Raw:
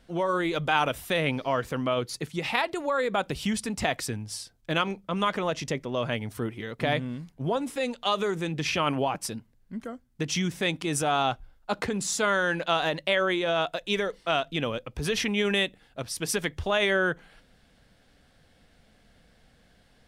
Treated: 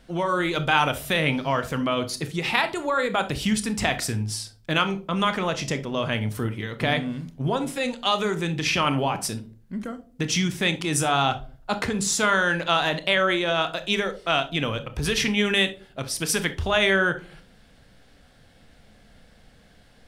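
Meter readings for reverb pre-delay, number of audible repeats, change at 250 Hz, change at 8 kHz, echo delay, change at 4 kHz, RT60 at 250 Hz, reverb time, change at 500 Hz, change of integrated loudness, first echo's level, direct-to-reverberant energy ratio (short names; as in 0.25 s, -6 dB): 26 ms, none, +4.0 dB, +5.0 dB, none, +5.0 dB, 0.60 s, 0.45 s, +1.5 dB, +4.0 dB, none, 9.5 dB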